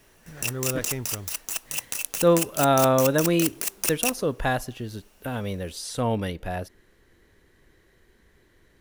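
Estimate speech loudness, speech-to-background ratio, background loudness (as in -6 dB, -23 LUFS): -25.5 LUFS, 2.5 dB, -28.0 LUFS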